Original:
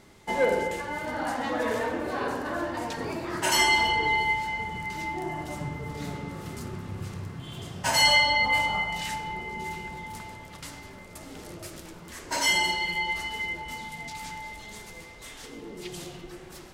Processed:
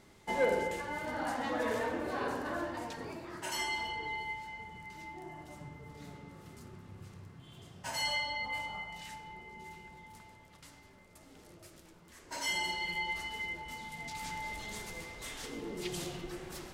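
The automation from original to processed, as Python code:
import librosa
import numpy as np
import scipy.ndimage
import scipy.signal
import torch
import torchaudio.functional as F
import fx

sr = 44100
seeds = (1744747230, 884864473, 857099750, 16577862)

y = fx.gain(x, sr, db=fx.line((2.52, -5.5), (3.5, -14.0), (12.16, -14.0), (12.91, -7.0), (13.79, -7.0), (14.56, 0.0)))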